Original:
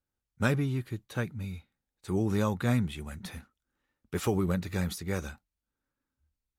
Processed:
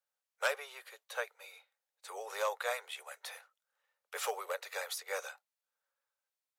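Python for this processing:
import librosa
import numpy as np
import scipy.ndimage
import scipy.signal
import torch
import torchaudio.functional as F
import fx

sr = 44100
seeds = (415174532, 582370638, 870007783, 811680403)

y = 10.0 ** (-18.0 / 20.0) * (np.abs((x / 10.0 ** (-18.0 / 20.0) + 3.0) % 4.0 - 2.0) - 1.0)
y = scipy.signal.sosfilt(scipy.signal.butter(12, 480.0, 'highpass', fs=sr, output='sos'), y)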